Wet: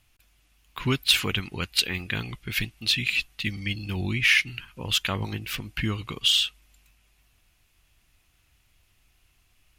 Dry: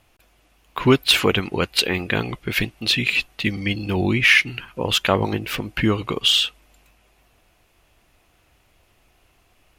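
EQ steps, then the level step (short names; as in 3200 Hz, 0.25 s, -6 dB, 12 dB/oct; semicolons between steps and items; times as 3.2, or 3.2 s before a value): bell 540 Hz -14 dB 2.6 oct; -2.0 dB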